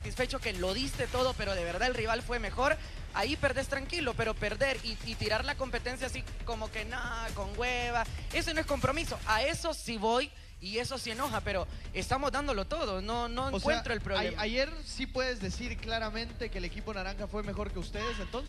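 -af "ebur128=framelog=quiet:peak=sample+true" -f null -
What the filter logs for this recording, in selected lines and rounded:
Integrated loudness:
  I:         -33.3 LUFS
  Threshold: -43.3 LUFS
Loudness range:
  LRA:         2.9 LU
  Threshold: -53.2 LUFS
  LRA low:   -34.8 LUFS
  LRA high:  -31.9 LUFS
Sample peak:
  Peak:      -14.3 dBFS
True peak:
  Peak:      -14.3 dBFS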